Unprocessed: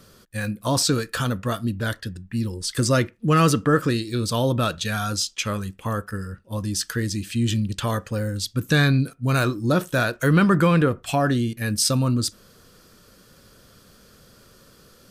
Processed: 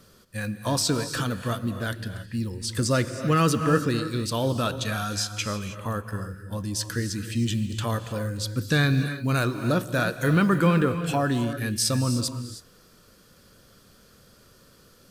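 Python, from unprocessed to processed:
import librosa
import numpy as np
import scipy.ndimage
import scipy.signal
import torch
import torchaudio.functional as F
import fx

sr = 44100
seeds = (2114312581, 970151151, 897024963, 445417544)

y = fx.quant_companded(x, sr, bits=8)
y = fx.rev_gated(y, sr, seeds[0], gate_ms=340, shape='rising', drr_db=9.0)
y = y * librosa.db_to_amplitude(-3.5)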